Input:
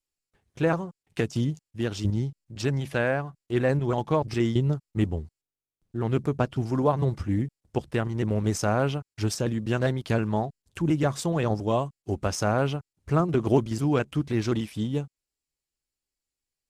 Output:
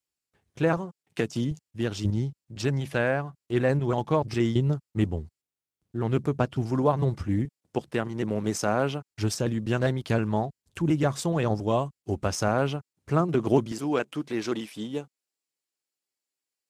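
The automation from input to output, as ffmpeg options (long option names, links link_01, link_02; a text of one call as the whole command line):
ffmpeg -i in.wav -af "asetnsamples=nb_out_samples=441:pad=0,asendcmd='0.77 highpass f 140;1.51 highpass f 62;7.45 highpass f 160;9.1 highpass f 53;12.48 highpass f 120;13.72 highpass f 280',highpass=66" out.wav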